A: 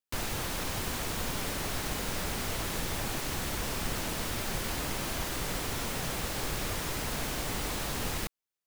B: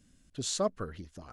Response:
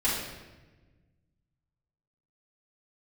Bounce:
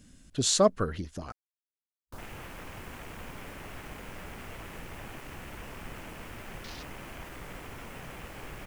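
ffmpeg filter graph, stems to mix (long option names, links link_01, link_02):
-filter_complex "[0:a]afwtdn=0.01,highshelf=frequency=3300:gain=9,adelay=2000,volume=-8.5dB[link_01];[1:a]acontrast=65,volume=1.5dB[link_02];[link_01][link_02]amix=inputs=2:normalize=0"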